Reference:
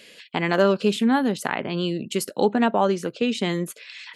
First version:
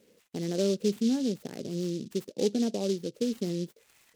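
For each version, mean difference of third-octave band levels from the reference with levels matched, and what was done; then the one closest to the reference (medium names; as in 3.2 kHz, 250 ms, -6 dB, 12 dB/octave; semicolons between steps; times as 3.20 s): 8.5 dB: FFT filter 490 Hz 0 dB, 970 Hz -24 dB, 2.3 kHz -16 dB; delay time shaken by noise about 4.5 kHz, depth 0.073 ms; trim -6 dB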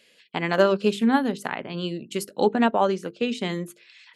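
3.0 dB: hum notches 50/100/150/200/250/300/350/400/450 Hz; upward expansion 1.5:1, over -40 dBFS; trim +1.5 dB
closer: second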